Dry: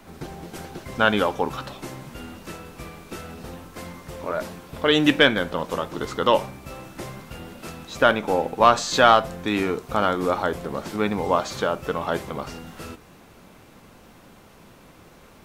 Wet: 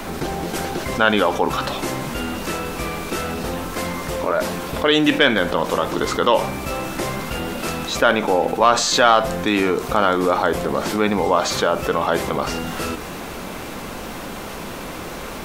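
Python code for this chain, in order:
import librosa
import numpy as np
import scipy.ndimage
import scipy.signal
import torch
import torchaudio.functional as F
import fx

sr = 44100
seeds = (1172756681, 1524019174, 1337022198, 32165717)

y = fx.peak_eq(x, sr, hz=110.0, db=-6.5, octaves=1.5)
y = fx.env_flatten(y, sr, amount_pct=50)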